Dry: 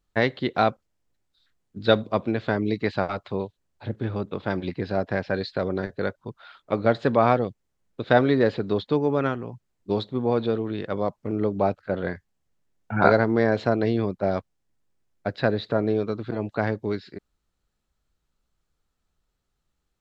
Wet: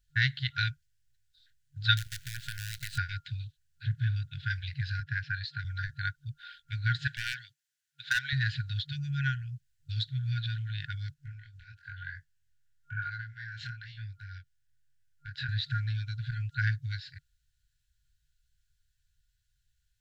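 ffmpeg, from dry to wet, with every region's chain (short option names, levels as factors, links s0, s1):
-filter_complex "[0:a]asettb=1/sr,asplit=3[s0][s1][s2];[s0]atrim=end=1.974[s3];[s1]atrim=start=1.97:end=2.98,asetpts=PTS-STARTPTS,afade=t=in:d=0.004:c=qsin,afade=t=out:st=1.006:d=0.004:c=qsin,aemphasis=mode=production:type=cd,acompressor=threshold=0.0398:ratio=20:attack=3.2:release=140:knee=1:detection=peak,acrusher=bits=6:dc=4:mix=0:aa=0.000001[s4];[s2]atrim=start=2.976[s5];[s3][s4]acrossfade=d=0.004:c1=hsin:c2=qsin[s6];[s6][s5]acrossfade=d=0.004:c1=qsin:c2=hsin,asettb=1/sr,asplit=3[s7][s8][s9];[s7]atrim=end=5.004[s10];[s8]atrim=start=5:end=5.65,asetpts=PTS-STARTPTS,afade=t=in:d=0.004:c=qsin,afade=t=out:st=0.646:d=0.004:c=qsin,highpass=100,highshelf=f=3100:g=-8.5[s11];[s9]atrim=start=5.646[s12];[s10][s11]acrossfade=d=0.004:c1=hsin:c2=qsin[s13];[s13][s12]acrossfade=d=0.004:c1=qsin:c2=hsin,asettb=1/sr,asplit=3[s14][s15][s16];[s14]atrim=end=7.074[s17];[s15]atrim=start=7.07:end=8.33,asetpts=PTS-STARTPTS,afade=t=in:d=0.004:c=qsin,afade=t=out:st=1.256:d=0.004:c=qsin,highpass=480,volume=5.01,asoftclip=hard,volume=0.2[s18];[s16]atrim=start=8.326[s19];[s17][s18]acrossfade=d=0.004:c1=hsin:c2=qsin[s20];[s20][s19]acrossfade=d=0.004:c1=qsin:c2=hsin,asettb=1/sr,asplit=3[s21][s22][s23];[s21]atrim=end=11.144[s24];[s22]atrim=start=11.14:end=15.49,asetpts=PTS-STARTPTS,afade=t=in:d=0.004:c=qsin,afade=t=out:st=4.346:d=0.004:c=qsin,equalizer=f=890:t=o:w=1.2:g=13,acompressor=threshold=0.0447:ratio=3:attack=3.2:release=140:knee=1:detection=peak,flanger=delay=19.5:depth=6.2:speed=1[s25];[s23]atrim=start=15.486[s26];[s24][s25]acrossfade=d=0.004:c1=hsin:c2=qsin[s27];[s27][s26]acrossfade=d=0.004:c1=qsin:c2=hsin,equalizer=f=2200:w=3:g=-6,afftfilt=real='re*(1-between(b*sr/4096,140,1400))':imag='im*(1-between(b*sr/4096,140,1400))':win_size=4096:overlap=0.75,volume=1.33"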